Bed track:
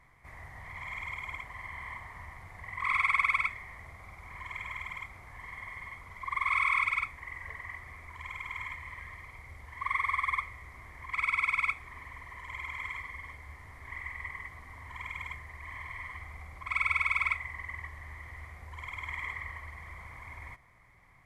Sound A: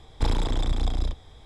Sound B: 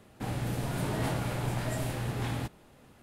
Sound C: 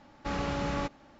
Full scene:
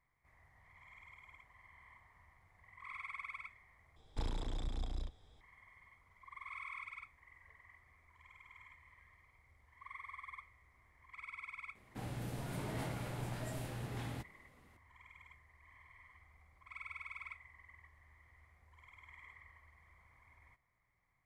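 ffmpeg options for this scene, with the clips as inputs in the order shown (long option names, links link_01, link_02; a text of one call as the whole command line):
ffmpeg -i bed.wav -i cue0.wav -i cue1.wav -filter_complex "[0:a]volume=-19.5dB,asplit=2[link_01][link_02];[link_01]atrim=end=3.964[link_03];[1:a]atrim=end=1.45,asetpts=PTS-STARTPTS,volume=-15dB[link_04];[link_02]atrim=start=5.406[link_05];[2:a]atrim=end=3.02,asetpts=PTS-STARTPTS,volume=-10dB,afade=type=in:duration=0.004:curve=hsin,afade=type=out:start_time=3.016:duration=0.004:curve=hsin,adelay=11750[link_06];[link_03][link_04]acrossfade=duration=0.004:curve1=hsin:curve2=hsin[link_07];[link_07][link_05]acrossfade=duration=0.004:curve1=hsin:curve2=hsin[link_08];[link_08][link_06]amix=inputs=2:normalize=0" out.wav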